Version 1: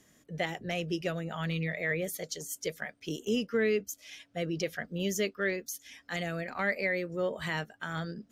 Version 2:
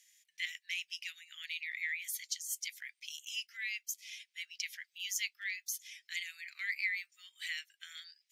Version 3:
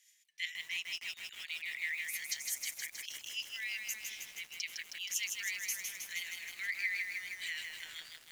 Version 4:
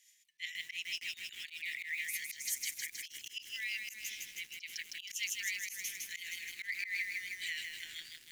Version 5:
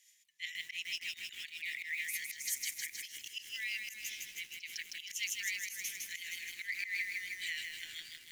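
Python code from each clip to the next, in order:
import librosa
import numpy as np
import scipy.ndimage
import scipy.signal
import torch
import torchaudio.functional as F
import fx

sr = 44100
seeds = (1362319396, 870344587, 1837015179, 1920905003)

y1 = scipy.signal.sosfilt(scipy.signal.ellip(4, 1.0, 70, 2100.0, 'highpass', fs=sr, output='sos'), x)
y1 = y1 * librosa.db_to_amplitude(1.0)
y2 = fx.harmonic_tremolo(y1, sr, hz=5.7, depth_pct=50, crossover_hz=2000.0)
y2 = fx.echo_crushed(y2, sr, ms=158, feedback_pct=80, bits=9, wet_db=-4)
y2 = y2 * librosa.db_to_amplitude(1.5)
y3 = fx.band_shelf(y2, sr, hz=840.0, db=-12.5, octaves=1.7)
y3 = fx.auto_swell(y3, sr, attack_ms=101.0)
y3 = y3 * librosa.db_to_amplitude(1.0)
y4 = fx.echo_feedback(y3, sr, ms=304, feedback_pct=57, wet_db=-17.0)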